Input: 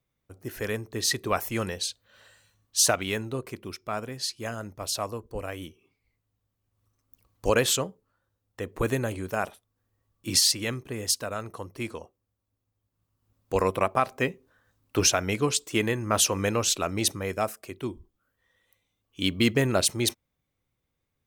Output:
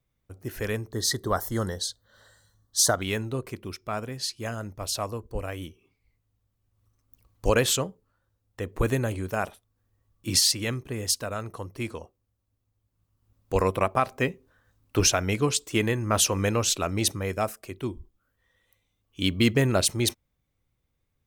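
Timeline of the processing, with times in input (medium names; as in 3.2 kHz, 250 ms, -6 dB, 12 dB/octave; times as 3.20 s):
0.92–3.02 s: Butterworth band-stop 2.5 kHz, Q 1.7
whole clip: bass shelf 94 Hz +9.5 dB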